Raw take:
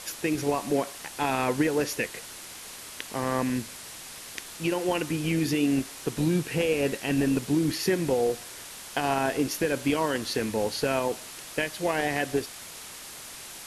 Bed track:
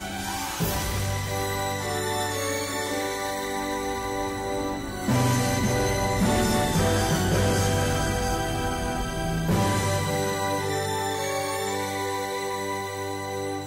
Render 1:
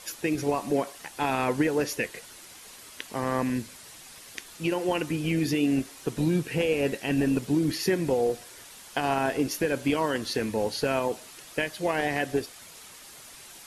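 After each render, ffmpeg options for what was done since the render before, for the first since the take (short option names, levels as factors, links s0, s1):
-af "afftdn=nr=7:nf=-43"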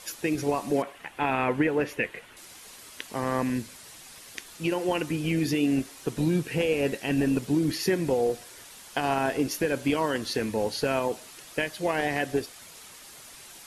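-filter_complex "[0:a]asettb=1/sr,asplit=3[s0][s1][s2];[s0]atrim=end=0.824[s3];[s1]atrim=start=0.82:end=2.37,asetpts=PTS-STARTPTS,afade=t=in:d=0.004:c=qsin,afade=t=out:st=1.546:d=0.004:c=qsin,highshelf=f=3600:t=q:w=1.5:g=-10.5[s4];[s2]atrim=start=2.366[s5];[s3][s4]acrossfade=d=0.004:c1=hsin:c2=qsin[s6];[s6][s5]acrossfade=d=0.004:c1=qsin:c2=hsin"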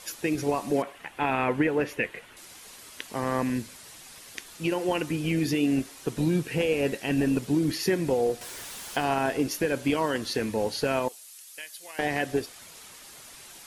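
-filter_complex "[0:a]asettb=1/sr,asplit=3[s0][s1][s2];[s0]atrim=end=8.414[s3];[s1]atrim=start=8.41:end=9.04,asetpts=PTS-STARTPTS,afade=t=in:d=0.004:c=qsin,afade=t=out:st=0.626:d=0.004:c=qsin,aeval=exprs='val(0)+0.5*0.0119*sgn(val(0))':c=same[s4];[s2]atrim=start=9.036[s5];[s3][s4]acrossfade=d=0.004:c1=hsin:c2=qsin[s6];[s6][s5]acrossfade=d=0.004:c1=qsin:c2=hsin,asettb=1/sr,asplit=3[s7][s8][s9];[s7]atrim=end=11.084[s10];[s8]atrim=start=11.08:end=11.99,asetpts=PTS-STARTPTS,afade=t=in:d=0.004:c=qsin,afade=t=out:st=0.906:d=0.004:c=qsin,aderivative[s11];[s9]atrim=start=11.986[s12];[s10][s11]acrossfade=d=0.004:c1=hsin:c2=qsin[s13];[s13][s12]acrossfade=d=0.004:c1=qsin:c2=hsin"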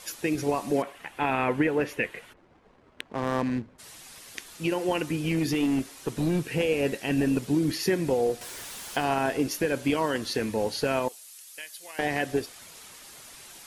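-filter_complex "[0:a]asplit=3[s0][s1][s2];[s0]afade=t=out:st=2.32:d=0.02[s3];[s1]adynamicsmooth=sensitivity=6.5:basefreq=630,afade=t=in:st=2.32:d=0.02,afade=t=out:st=3.78:d=0.02[s4];[s2]afade=t=in:st=3.78:d=0.02[s5];[s3][s4][s5]amix=inputs=3:normalize=0,asettb=1/sr,asplit=3[s6][s7][s8];[s6]atrim=end=5.144[s9];[s7]atrim=start=5.14:end=6.54,asetpts=PTS-STARTPTS,afade=t=in:d=0.004:c=qsin,afade=t=out:st=1.396:d=0.004:c=qsin,aeval=exprs='clip(val(0),-1,0.0891)':c=same[s10];[s8]atrim=start=6.536[s11];[s9][s10]acrossfade=d=0.004:c1=hsin:c2=qsin[s12];[s12][s11]acrossfade=d=0.004:c1=qsin:c2=hsin"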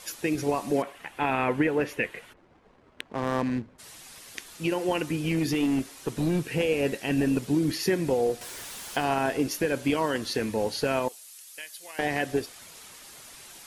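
-af anull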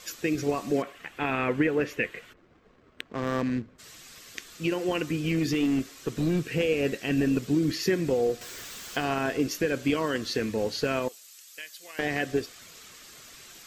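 -af "superequalizer=8b=0.708:9b=0.447:16b=0.316"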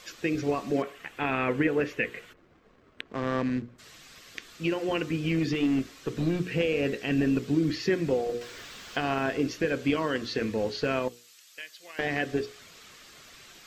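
-filter_complex "[0:a]acrossover=split=5200[s0][s1];[s1]acompressor=threshold=0.00126:ratio=4:attack=1:release=60[s2];[s0][s2]amix=inputs=2:normalize=0,bandreject=f=60:t=h:w=6,bandreject=f=120:t=h:w=6,bandreject=f=180:t=h:w=6,bandreject=f=240:t=h:w=6,bandreject=f=300:t=h:w=6,bandreject=f=360:t=h:w=6,bandreject=f=420:t=h:w=6,bandreject=f=480:t=h:w=6"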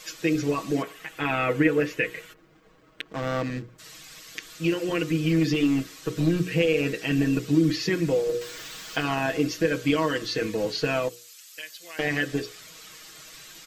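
-af "highshelf=f=5800:g=9.5,aecho=1:1:6.3:0.81"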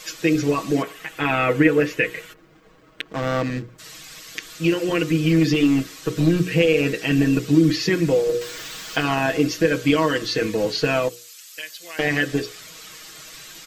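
-af "volume=1.78"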